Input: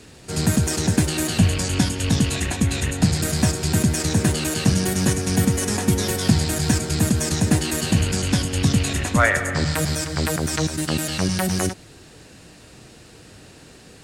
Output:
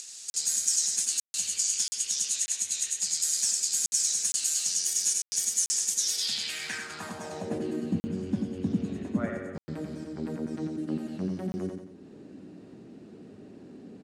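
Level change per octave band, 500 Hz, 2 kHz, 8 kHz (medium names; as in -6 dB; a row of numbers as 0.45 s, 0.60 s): -12.5 dB, -16.5 dB, +0.5 dB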